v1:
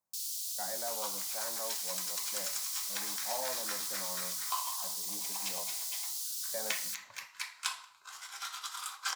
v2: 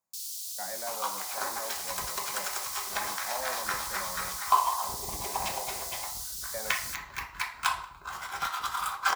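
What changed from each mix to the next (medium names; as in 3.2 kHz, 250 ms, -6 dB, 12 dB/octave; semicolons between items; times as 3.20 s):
speech: remove distance through air 480 m; second sound: remove band-pass filter 6.4 kHz, Q 0.77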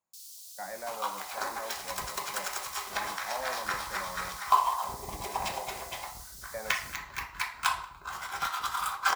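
first sound -9.5 dB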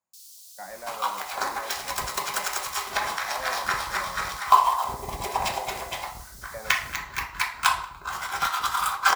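second sound +6.5 dB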